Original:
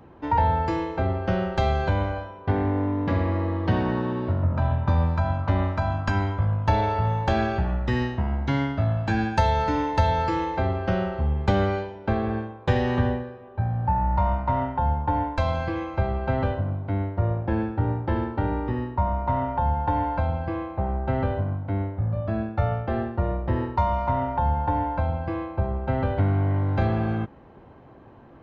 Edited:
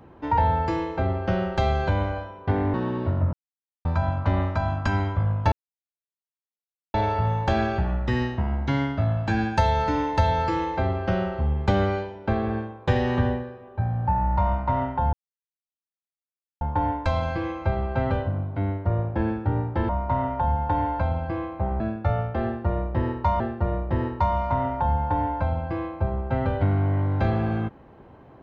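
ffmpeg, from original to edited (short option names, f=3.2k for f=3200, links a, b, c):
-filter_complex "[0:a]asplit=9[a][b][c][d][e][f][g][h][i];[a]atrim=end=2.742[j];[b]atrim=start=3.958:end=4.55,asetpts=PTS-STARTPTS,afade=t=out:st=0.588:d=0.004:c=hsin[k];[c]atrim=start=4.55:end=5.07,asetpts=PTS-STARTPTS,volume=0[l];[d]atrim=start=5.07:end=6.74,asetpts=PTS-STARTPTS,afade=t=in:d=0.004:c=hsin,afade=t=out:st=1.666:d=0.004:c=hsin,apad=pad_dur=1.42[m];[e]atrim=start=6.74:end=14.93,asetpts=PTS-STARTPTS,afade=t=in:d=0.004:c=hsin,afade=t=out:st=8.186:d=0.004:c=hsin,apad=pad_dur=1.48[n];[f]atrim=start=14.93:end=18.212,asetpts=PTS-STARTPTS,afade=t=in:d=0.004:c=hsin[o];[g]atrim=start=19.068:end=20.982[p];[h]atrim=start=22.328:end=23.932[q];[i]atrim=start=22.968[r];[k][l][m][n][o]concat=n=5:v=0:a=1[s];[j][s]acrossfade=d=0.004:c1=hsin:c2=hsin[t];[t][p]acrossfade=d=0.004:c1=hsin:c2=hsin[u];[u][q]acrossfade=d=0.004:c1=hsin:c2=hsin[v];[v][r]acrossfade=d=0.004:c1=hsin:c2=hsin"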